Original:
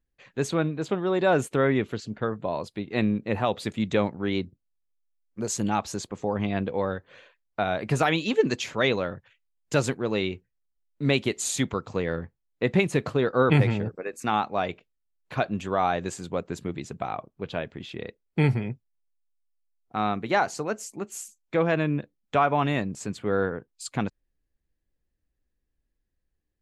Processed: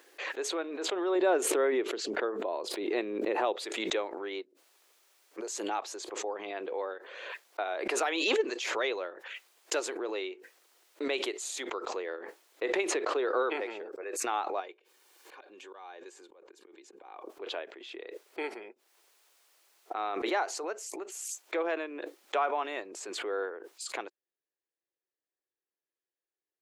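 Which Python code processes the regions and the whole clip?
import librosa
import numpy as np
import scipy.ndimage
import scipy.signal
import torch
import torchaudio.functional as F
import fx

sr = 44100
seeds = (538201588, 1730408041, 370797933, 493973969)

y = fx.chain(x, sr, fx.low_shelf(hz=370.0, db=10.5),
    fx.pre_swell(db_per_s=120.0), at=(1.15, 3.56))
y = fx.chain(y, sr, fx.lowpass(hz=6500.0, slope=12),
    fx.band_squash(depth_pct=70), at=(12.88, 13.66))
y = fx.chain(y, sr, fx.auto_swell(attack_ms=795.0),
    fx.notch_comb(f0_hz=660.0),
    fx.band_squash(depth_pct=70), at=(14.6, 17.28))
y = scipy.signal.sosfilt(scipy.signal.ellip(4, 1.0, 60, 350.0, 'highpass', fs=sr, output='sos'), y)
y = fx.high_shelf(y, sr, hz=9900.0, db=-5.5)
y = fx.pre_swell(y, sr, db_per_s=33.0)
y = F.gain(torch.from_numpy(y), -7.0).numpy()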